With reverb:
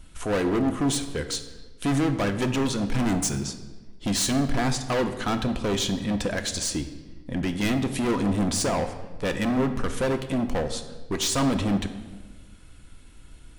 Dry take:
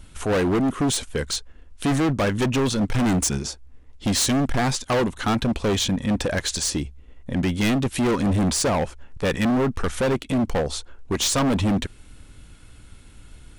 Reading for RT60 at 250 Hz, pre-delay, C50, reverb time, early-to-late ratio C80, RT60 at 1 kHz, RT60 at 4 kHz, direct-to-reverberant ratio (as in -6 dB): 1.5 s, 3 ms, 10.5 dB, 1.3 s, 12.0 dB, 1.1 s, 1.0 s, 7.0 dB